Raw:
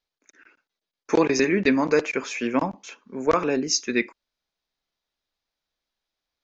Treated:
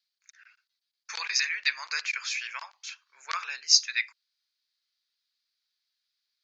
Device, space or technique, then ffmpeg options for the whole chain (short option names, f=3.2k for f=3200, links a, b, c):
headphones lying on a table: -af "highpass=f=1.4k:w=0.5412,highpass=f=1.4k:w=1.3066,equalizer=f=4.5k:t=o:w=0.51:g=11,volume=-1.5dB"